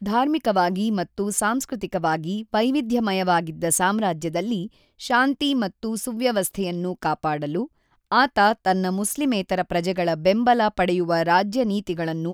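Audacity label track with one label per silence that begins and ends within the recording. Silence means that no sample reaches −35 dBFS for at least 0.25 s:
4.670000	5.000000	silence
7.660000	8.120000	silence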